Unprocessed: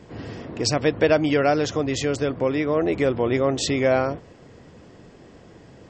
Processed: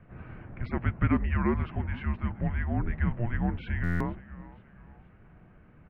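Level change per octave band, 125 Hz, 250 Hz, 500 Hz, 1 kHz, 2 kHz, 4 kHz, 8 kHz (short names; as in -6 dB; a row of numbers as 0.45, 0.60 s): +0.5 dB, -7.0 dB, -19.5 dB, -10.0 dB, -8.0 dB, -24.5 dB, under -35 dB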